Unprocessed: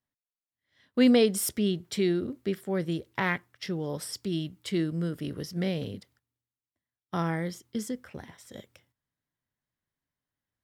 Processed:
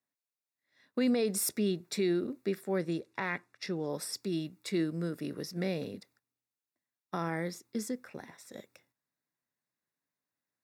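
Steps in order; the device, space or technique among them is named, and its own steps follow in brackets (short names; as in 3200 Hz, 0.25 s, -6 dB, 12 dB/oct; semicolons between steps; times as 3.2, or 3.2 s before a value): PA system with an anti-feedback notch (HPF 200 Hz 12 dB/oct; Butterworth band-stop 3100 Hz, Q 5.4; limiter -20 dBFS, peak gain reduction 8.5 dB); 2.81–3.93 LPF 10000 Hz 12 dB/oct; gain -1 dB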